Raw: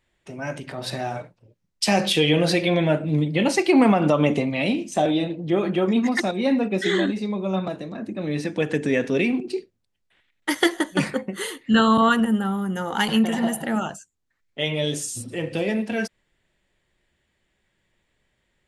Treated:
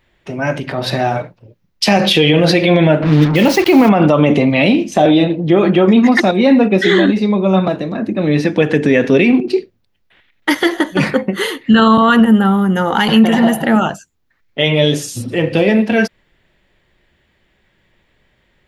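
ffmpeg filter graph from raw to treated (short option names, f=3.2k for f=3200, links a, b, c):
-filter_complex "[0:a]asettb=1/sr,asplit=3[a][b][c];[a]atrim=end=3.024[d];[b]atrim=start=3.02:end=3.89,asetpts=PTS-STARTPTS,afade=t=in:d=0.004:c=qsin,afade=t=out:st=0.866:d=0.004:c=qsin,lowpass=10k,acrusher=bits=4:mix=0:aa=0.5[e];[c]atrim=start=3.886[f];[d][e]acrossfade=d=0.004:c1=hsin:c2=qsin[g];[g][f]acrossfade=d=0.004:c1=qsin:c2=hsin,equalizer=f=8.4k:w=1.3:g=-13,alimiter=level_in=13.5dB:limit=-1dB:release=50:level=0:latency=1,volume=-1dB"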